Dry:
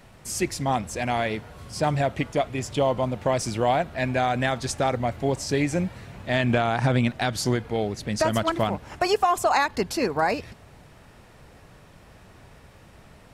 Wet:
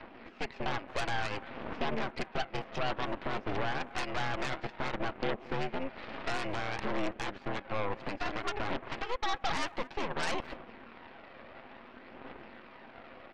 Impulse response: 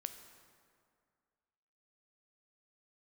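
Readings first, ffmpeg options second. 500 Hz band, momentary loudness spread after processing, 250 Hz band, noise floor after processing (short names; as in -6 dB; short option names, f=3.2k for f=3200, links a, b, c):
-12.5 dB, 17 LU, -12.5 dB, -53 dBFS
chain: -filter_complex "[0:a]aecho=1:1:6.9:0.37,acompressor=threshold=-34dB:ratio=3,alimiter=level_in=3.5dB:limit=-24dB:level=0:latency=1:release=135,volume=-3.5dB,highpass=f=170:t=q:w=0.5412,highpass=f=170:t=q:w=1.307,lowpass=f=2.6k:t=q:w=0.5176,lowpass=f=2.6k:t=q:w=0.7071,lowpass=f=2.6k:t=q:w=1.932,afreqshift=84,aphaser=in_gain=1:out_gain=1:delay=1.8:decay=0.37:speed=0.57:type=triangular,asplit=2[a][b];[b]adelay=220,highpass=300,lowpass=3.4k,asoftclip=type=hard:threshold=-32dB,volume=-17dB[c];[a][c]amix=inputs=2:normalize=0,aeval=exprs='0.0631*(cos(1*acos(clip(val(0)/0.0631,-1,1)))-cos(1*PI/2))+0.0224*(cos(8*acos(clip(val(0)/0.0631,-1,1)))-cos(8*PI/2))':c=same"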